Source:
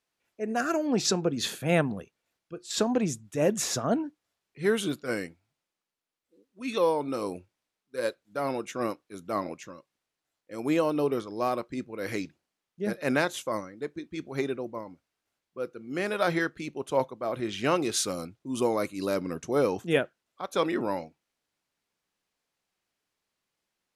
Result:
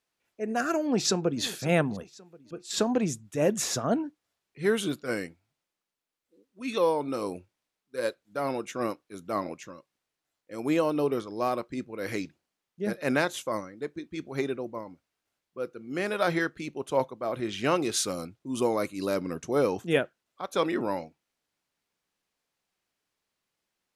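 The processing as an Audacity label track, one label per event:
0.820000	1.420000	echo throw 540 ms, feedback 40%, level -17 dB

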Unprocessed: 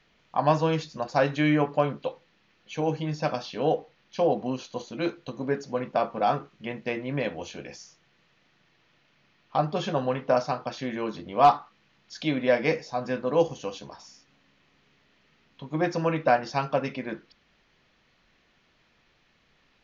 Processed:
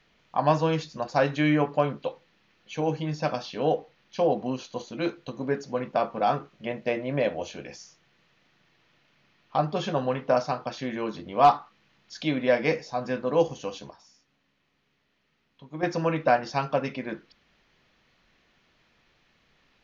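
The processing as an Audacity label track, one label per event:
6.530000	7.540000	peaking EQ 610 Hz +9.5 dB 0.46 oct
13.910000	15.830000	gain -8 dB

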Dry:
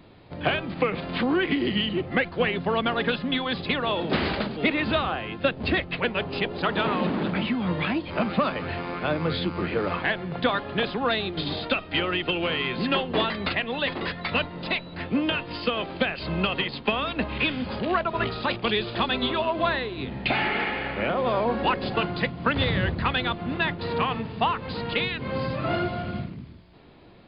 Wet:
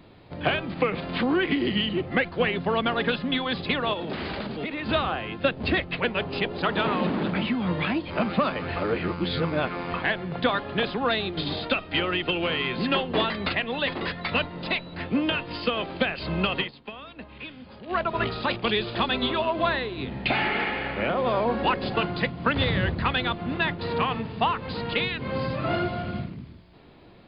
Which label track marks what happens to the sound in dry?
3.930000	4.890000	compression 12:1, threshold -27 dBFS
8.760000	9.940000	reverse
16.600000	17.990000	dip -14.5 dB, fades 0.12 s

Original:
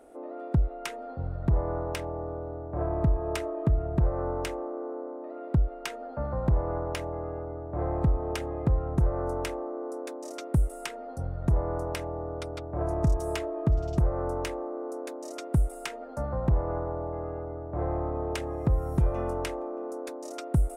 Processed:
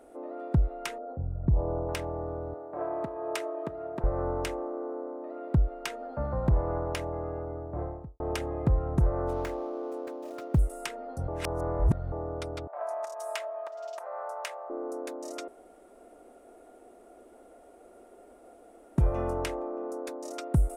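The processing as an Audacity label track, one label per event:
0.980000	1.890000	resonances exaggerated exponent 1.5
2.540000	4.040000	high-pass 390 Hz
7.540000	8.200000	studio fade out
9.280000	10.590000	median filter over 15 samples
11.280000	12.120000	reverse
12.670000	14.700000	elliptic high-pass 610 Hz, stop band 80 dB
15.480000	18.980000	room tone

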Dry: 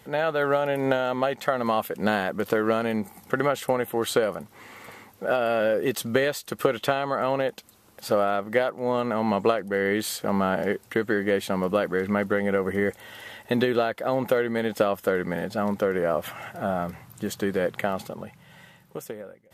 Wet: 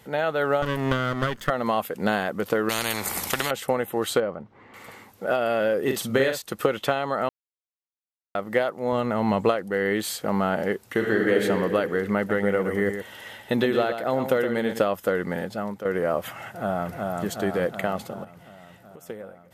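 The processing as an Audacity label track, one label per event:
0.620000	1.500000	comb filter that takes the minimum delay 0.61 ms
2.690000	3.510000	spectrum-flattening compressor 4:1
4.200000	4.740000	tape spacing loss at 10 kHz 36 dB
5.820000	6.420000	doubling 45 ms -6 dB
7.290000	8.350000	mute
8.920000	9.490000	peaking EQ 60 Hz +10.5 dB 1.9 oct
10.840000	11.420000	reverb throw, RT60 2.2 s, DRR -0.5 dB
12.170000	14.790000	delay 119 ms -8 dB
15.390000	15.850000	fade out, to -11.5 dB
16.480000	16.920000	echo throw 370 ms, feedback 65%, level -2.5 dB
18.240000	19.100000	compression 5:1, threshold -42 dBFS

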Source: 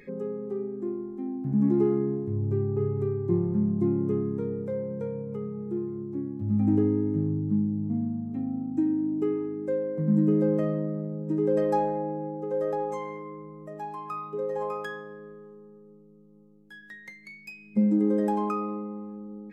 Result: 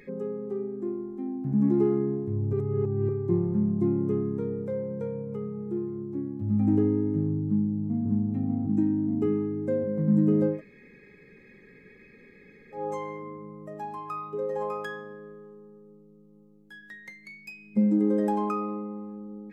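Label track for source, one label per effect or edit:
2.530000	3.090000	reverse
7.460000	8.070000	echo throw 590 ms, feedback 70%, level -0.5 dB
10.540000	12.790000	room tone, crossfade 0.16 s

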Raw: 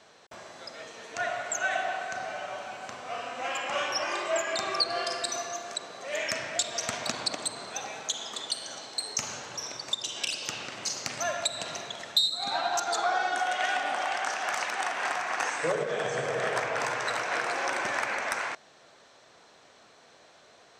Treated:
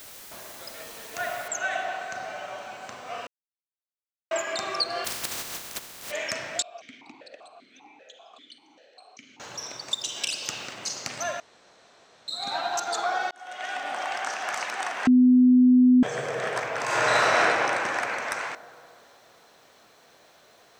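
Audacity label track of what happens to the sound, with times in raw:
1.480000	1.480000	noise floor step -45 dB -69 dB
3.270000	4.310000	mute
5.040000	6.100000	spectral contrast reduction exponent 0.15
6.620000	9.400000	stepped vowel filter 5.1 Hz
9.910000	10.730000	treble shelf 5.3 kHz +5.5 dB
11.400000	12.280000	room tone
13.310000	14.280000	fade in equal-power
15.070000	16.030000	bleep 251 Hz -13 dBFS
16.840000	17.380000	reverb throw, RT60 2.8 s, DRR -10 dB

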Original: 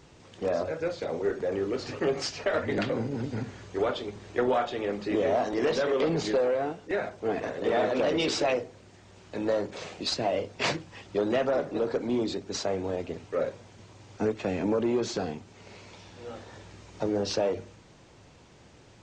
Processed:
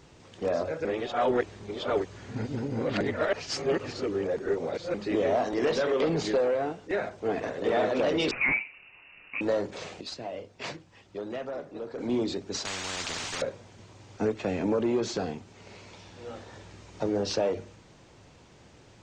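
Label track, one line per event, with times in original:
0.850000	4.940000	reverse
8.310000	9.410000	frequency inversion carrier 2.8 kHz
10.010000	11.980000	gain -9.5 dB
12.650000	13.420000	spectrum-flattening compressor 10:1

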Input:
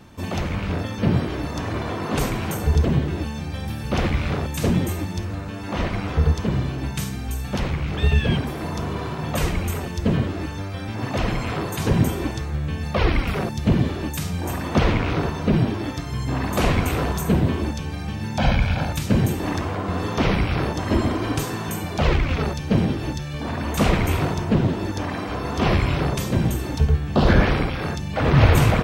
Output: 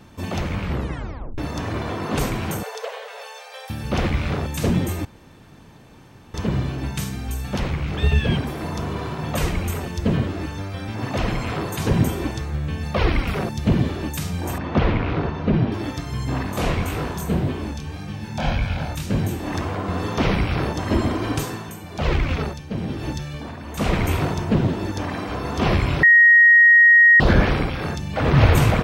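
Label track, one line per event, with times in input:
0.610000	0.610000	tape stop 0.77 s
2.630000	3.700000	brick-wall FIR high-pass 430 Hz
5.050000	6.340000	room tone
14.580000	15.720000	distance through air 200 m
16.430000	19.530000	chorus 1.8 Hz, delay 19.5 ms, depth 7.3 ms
21.350000	24.040000	tremolo 1.1 Hz, depth 65%
26.030000	27.200000	bleep 1.88 kHz -8 dBFS

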